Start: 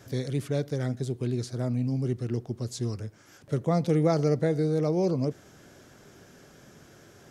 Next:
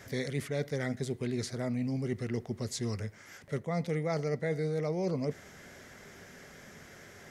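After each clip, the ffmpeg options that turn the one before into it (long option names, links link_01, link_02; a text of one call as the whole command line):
ffmpeg -i in.wav -af "equalizer=frequency=125:width_type=o:width=0.33:gain=-8,equalizer=frequency=315:width_type=o:width=0.33:gain=-8,equalizer=frequency=2000:width_type=o:width=0.33:gain=12,areverse,acompressor=threshold=-30dB:ratio=6,areverse,volume=1.5dB" out.wav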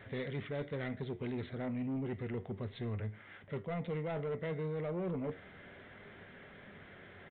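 ffmpeg -i in.wav -af "flanger=delay=9.3:depth=2.6:regen=73:speed=0.32:shape=triangular,aresample=8000,asoftclip=type=tanh:threshold=-34.5dB,aresample=44100,volume=2.5dB" out.wav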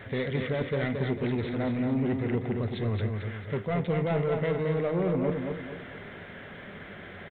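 ffmpeg -i in.wav -af "aecho=1:1:223|446|669|892|1115:0.562|0.236|0.0992|0.0417|0.0175,volume=9dB" out.wav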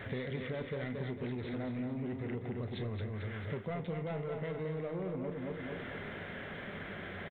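ffmpeg -i in.wav -filter_complex "[0:a]asplit=2[link_01][link_02];[link_02]adelay=32,volume=-12.5dB[link_03];[link_01][link_03]amix=inputs=2:normalize=0,acompressor=threshold=-36dB:ratio=6" out.wav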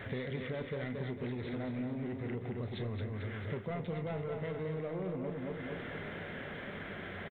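ffmpeg -i in.wav -af "aecho=1:1:1199:0.178" out.wav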